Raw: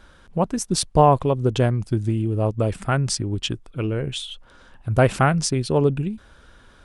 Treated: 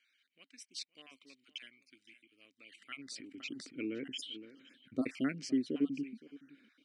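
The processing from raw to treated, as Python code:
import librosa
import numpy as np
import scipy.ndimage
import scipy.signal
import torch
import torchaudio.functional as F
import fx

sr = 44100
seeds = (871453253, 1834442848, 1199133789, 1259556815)

y = fx.spec_dropout(x, sr, seeds[0], share_pct=30)
y = fx.vowel_filter(y, sr, vowel='i')
y = fx.low_shelf(y, sr, hz=140.0, db=11.0)
y = fx.notch(y, sr, hz=3400.0, q=6.1)
y = y + 10.0 ** (-20.0 / 20.0) * np.pad(y, (int(516 * sr / 1000.0), 0))[:len(y)]
y = fx.filter_sweep_highpass(y, sr, from_hz=2600.0, to_hz=410.0, start_s=2.58, end_s=3.73, q=0.75)
y = fx.sustainer(y, sr, db_per_s=75.0, at=(2.98, 5.03), fade=0.02)
y = y * librosa.db_to_amplitude(4.0)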